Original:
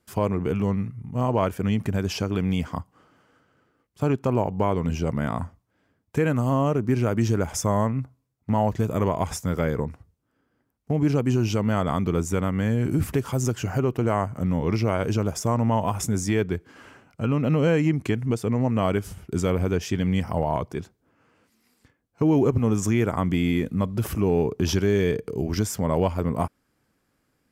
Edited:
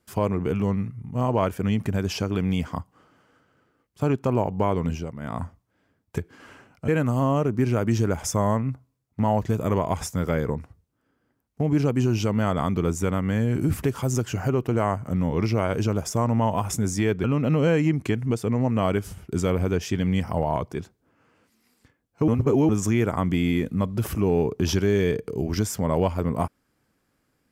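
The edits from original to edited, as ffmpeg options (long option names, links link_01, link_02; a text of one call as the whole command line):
ffmpeg -i in.wav -filter_complex "[0:a]asplit=8[link_01][link_02][link_03][link_04][link_05][link_06][link_07][link_08];[link_01]atrim=end=5.11,asetpts=PTS-STARTPTS,afade=type=out:start_time=4.86:duration=0.25:silence=0.281838[link_09];[link_02]atrim=start=5.11:end=5.19,asetpts=PTS-STARTPTS,volume=-11dB[link_10];[link_03]atrim=start=5.19:end=6.182,asetpts=PTS-STARTPTS,afade=type=in:duration=0.25:silence=0.281838[link_11];[link_04]atrim=start=16.538:end=17.242[link_12];[link_05]atrim=start=6.178:end=16.542[link_13];[link_06]atrim=start=17.238:end=22.282[link_14];[link_07]atrim=start=22.278:end=22.692,asetpts=PTS-STARTPTS,areverse[link_15];[link_08]atrim=start=22.688[link_16];[link_09][link_10][link_11]concat=n=3:v=0:a=1[link_17];[link_17][link_12]acrossfade=duration=0.004:curve1=hsin:curve2=hsin[link_18];[link_18][link_13]acrossfade=duration=0.004:curve1=hsin:curve2=hsin[link_19];[link_19][link_14]acrossfade=duration=0.004:curve1=hsin:curve2=hsin[link_20];[link_20][link_15]acrossfade=duration=0.004:curve1=hsin:curve2=hsin[link_21];[link_21][link_16]acrossfade=duration=0.004:curve1=hsin:curve2=hsin" out.wav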